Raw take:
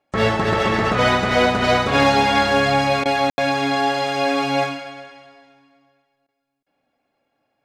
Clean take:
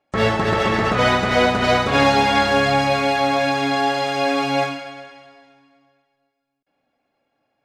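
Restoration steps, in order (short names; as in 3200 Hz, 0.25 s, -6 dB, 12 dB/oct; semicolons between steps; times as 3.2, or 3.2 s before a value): clip repair -6.5 dBFS; room tone fill 3.3–3.38; interpolate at 3.04/6.27, 14 ms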